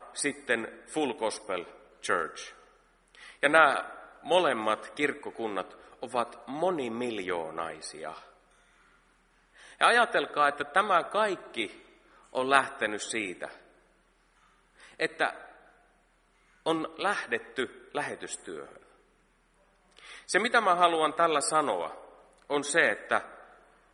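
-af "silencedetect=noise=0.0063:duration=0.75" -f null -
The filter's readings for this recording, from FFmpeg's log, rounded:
silence_start: 8.23
silence_end: 9.60 | silence_duration: 1.37
silence_start: 13.56
silence_end: 14.83 | silence_duration: 1.27
silence_start: 15.51
silence_end: 16.66 | silence_duration: 1.15
silence_start: 18.77
silence_end: 19.97 | silence_duration: 1.20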